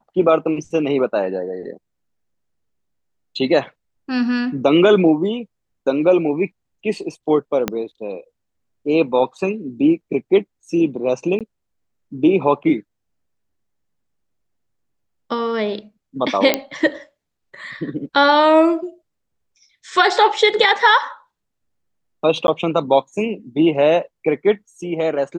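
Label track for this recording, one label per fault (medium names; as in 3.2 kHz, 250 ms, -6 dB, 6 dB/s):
7.680000	7.680000	pop -5 dBFS
11.390000	11.410000	dropout 17 ms
16.540000	16.540000	pop -1 dBFS
22.470000	22.480000	dropout 11 ms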